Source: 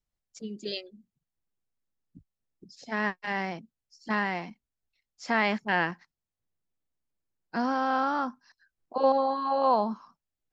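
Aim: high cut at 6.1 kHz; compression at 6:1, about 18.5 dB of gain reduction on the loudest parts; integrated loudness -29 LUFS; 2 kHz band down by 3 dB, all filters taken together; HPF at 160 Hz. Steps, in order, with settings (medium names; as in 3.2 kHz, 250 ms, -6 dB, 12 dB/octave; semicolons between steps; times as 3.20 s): high-pass 160 Hz; low-pass 6.1 kHz; peaking EQ 2 kHz -3.5 dB; compression 6:1, threshold -39 dBFS; trim +14.5 dB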